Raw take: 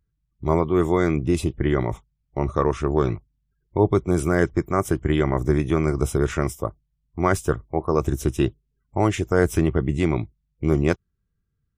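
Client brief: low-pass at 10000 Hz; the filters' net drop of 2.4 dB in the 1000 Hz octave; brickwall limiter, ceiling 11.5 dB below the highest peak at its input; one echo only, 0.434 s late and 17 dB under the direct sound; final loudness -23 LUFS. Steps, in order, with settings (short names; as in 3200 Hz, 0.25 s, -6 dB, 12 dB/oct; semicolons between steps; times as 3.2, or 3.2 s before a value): LPF 10000 Hz; bell 1000 Hz -3 dB; limiter -16 dBFS; echo 0.434 s -17 dB; gain +5.5 dB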